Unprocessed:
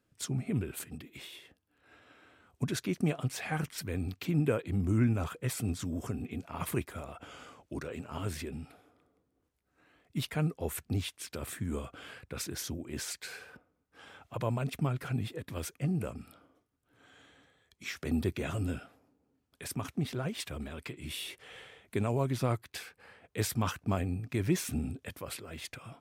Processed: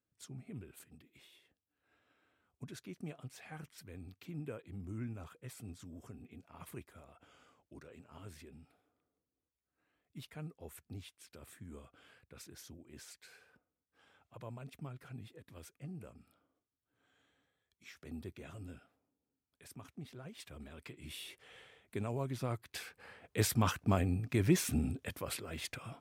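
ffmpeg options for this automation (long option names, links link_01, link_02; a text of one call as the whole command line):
ffmpeg -i in.wav -af "volume=0.5dB,afade=type=in:start_time=20.23:duration=0.77:silence=0.421697,afade=type=in:start_time=22.51:duration=0.49:silence=0.398107" out.wav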